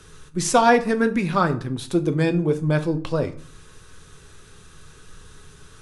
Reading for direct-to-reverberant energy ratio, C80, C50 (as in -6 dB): 7.5 dB, 19.5 dB, 16.0 dB